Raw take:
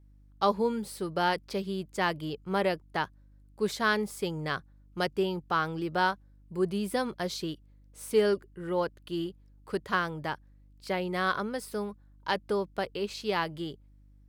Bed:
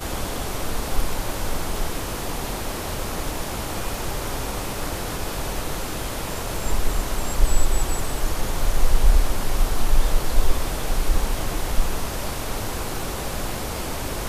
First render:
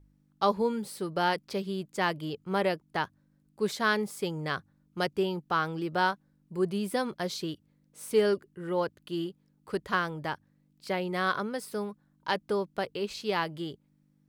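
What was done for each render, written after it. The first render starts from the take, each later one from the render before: de-hum 50 Hz, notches 2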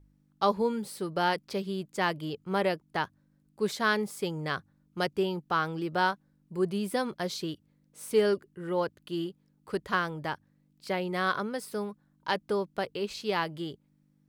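nothing audible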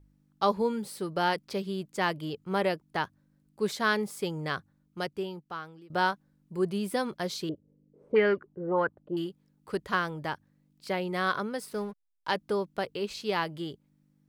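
4.48–5.9 fade out, to -23 dB; 7.49–9.17 envelope low-pass 390–2100 Hz up, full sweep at -22.5 dBFS; 11.66–12.29 backlash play -48.5 dBFS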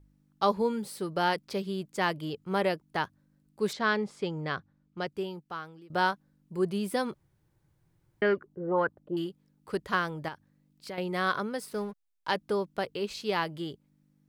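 3.73–5.07 air absorption 110 m; 7.14–8.22 room tone; 10.28–10.98 compressor 3:1, threshold -38 dBFS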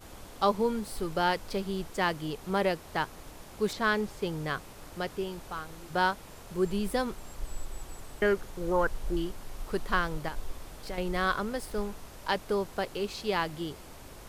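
add bed -19.5 dB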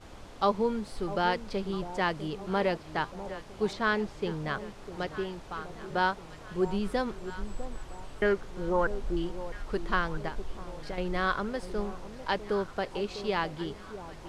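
air absorption 74 m; echo with dull and thin repeats by turns 0.651 s, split 930 Hz, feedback 66%, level -12 dB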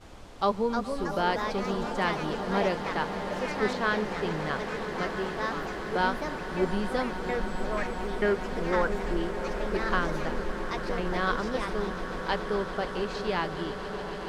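echoes that change speed 0.377 s, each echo +3 st, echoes 3, each echo -6 dB; swelling echo 0.14 s, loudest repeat 8, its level -16 dB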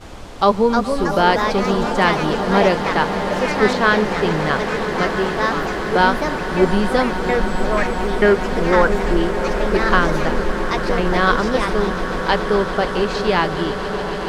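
gain +12 dB; limiter -2 dBFS, peak gain reduction 2 dB

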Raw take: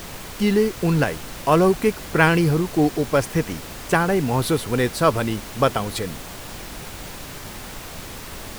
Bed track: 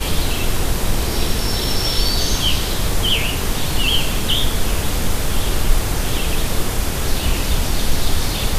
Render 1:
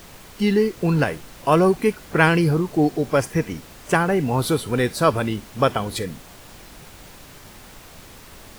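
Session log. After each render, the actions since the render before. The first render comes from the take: noise print and reduce 8 dB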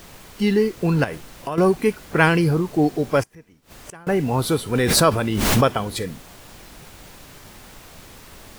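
1.04–1.58 compressor 5:1, threshold -24 dBFS; 3.23–4.07 flipped gate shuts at -24 dBFS, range -24 dB; 4.75–5.68 backwards sustainer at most 28 dB/s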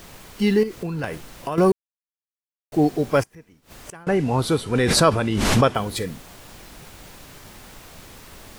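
0.63–1.04 compressor, threshold -25 dBFS; 1.72–2.72 mute; 4.04–5.75 Bessel low-pass 8700 Hz, order 8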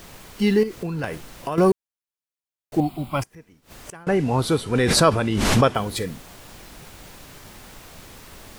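2.8–3.22 fixed phaser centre 1700 Hz, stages 6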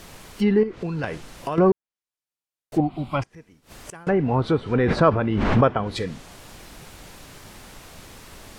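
treble ducked by the level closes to 1800 Hz, closed at -17 dBFS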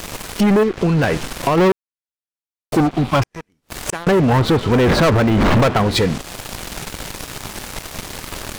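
sample leveller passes 5; compressor 1.5:1, threshold -22 dBFS, peak gain reduction 5.5 dB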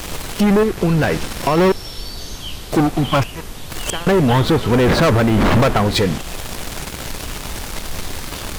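add bed track -12 dB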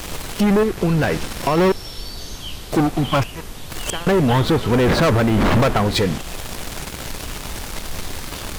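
gain -2 dB

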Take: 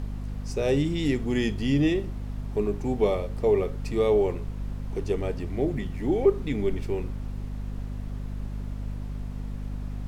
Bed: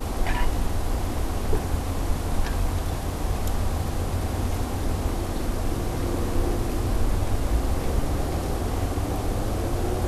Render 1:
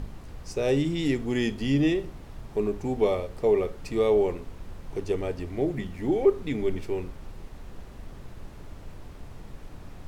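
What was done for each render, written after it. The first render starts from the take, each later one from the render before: de-hum 50 Hz, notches 5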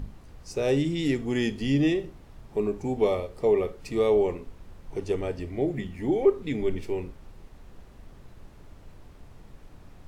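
noise print and reduce 6 dB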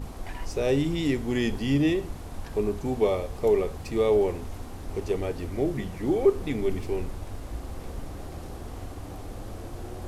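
add bed -12.5 dB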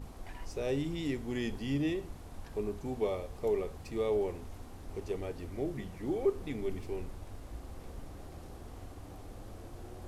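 gain -9 dB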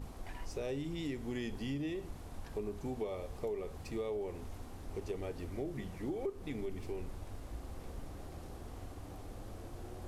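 compressor 6:1, threshold -35 dBFS, peak gain reduction 11 dB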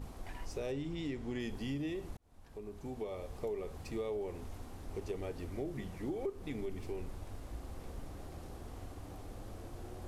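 0.72–1.4 air absorption 51 m; 2.17–3.73 fade in equal-power

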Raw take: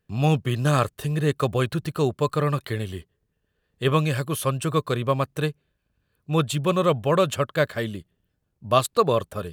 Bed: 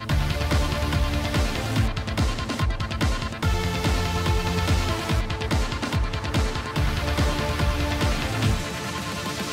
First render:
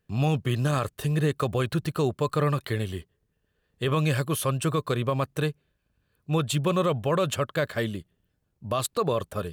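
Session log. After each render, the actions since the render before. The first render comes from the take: limiter -15.5 dBFS, peak gain reduction 11 dB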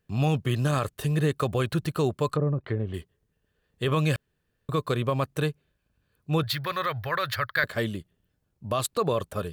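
2.29–2.94 treble ducked by the level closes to 510 Hz, closed at -22 dBFS; 4.16–4.69 room tone; 6.43–7.64 EQ curve 120 Hz 0 dB, 180 Hz -18 dB, 430 Hz -11 dB, 1100 Hz 0 dB, 1900 Hz +13 dB, 2800 Hz -6 dB, 4600 Hz +9 dB, 7600 Hz -15 dB, 15000 Hz +10 dB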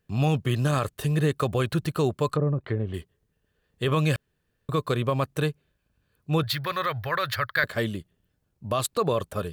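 gain +1 dB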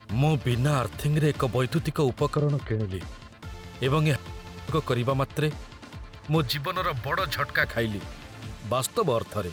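add bed -17 dB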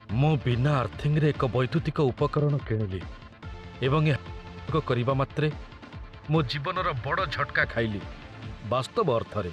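LPF 3700 Hz 12 dB/oct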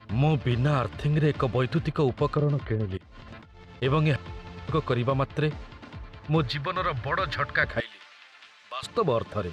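2.97–3.82 negative-ratio compressor -48 dBFS; 7.8–8.83 HPF 1500 Hz

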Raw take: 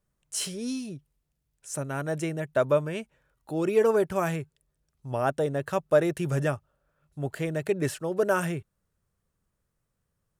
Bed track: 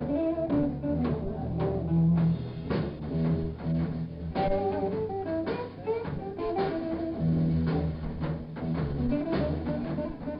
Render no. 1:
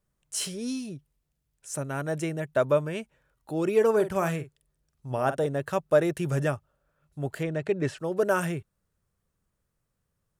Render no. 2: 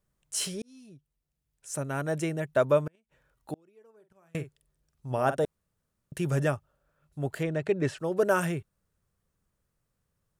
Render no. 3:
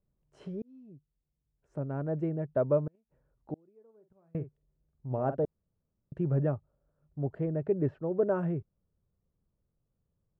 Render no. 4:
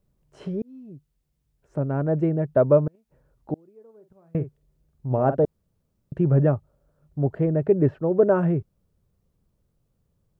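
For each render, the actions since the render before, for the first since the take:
3.92–5.46 doubler 47 ms -11.5 dB; 7.43–7.98 air absorption 92 m
0.62–1.88 fade in; 2.87–4.35 flipped gate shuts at -24 dBFS, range -36 dB; 5.45–6.12 room tone
Bessel low-pass 530 Hz, order 2
gain +9.5 dB

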